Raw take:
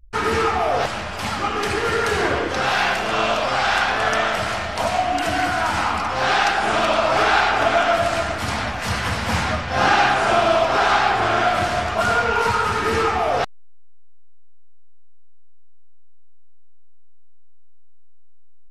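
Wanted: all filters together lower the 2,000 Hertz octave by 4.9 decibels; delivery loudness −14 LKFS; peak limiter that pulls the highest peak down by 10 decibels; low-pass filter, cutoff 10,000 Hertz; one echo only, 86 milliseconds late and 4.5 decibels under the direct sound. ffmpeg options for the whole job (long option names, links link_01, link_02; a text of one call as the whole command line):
ffmpeg -i in.wav -af "lowpass=10000,equalizer=frequency=2000:width_type=o:gain=-7,alimiter=limit=-16.5dB:level=0:latency=1,aecho=1:1:86:0.596,volume=10dB" out.wav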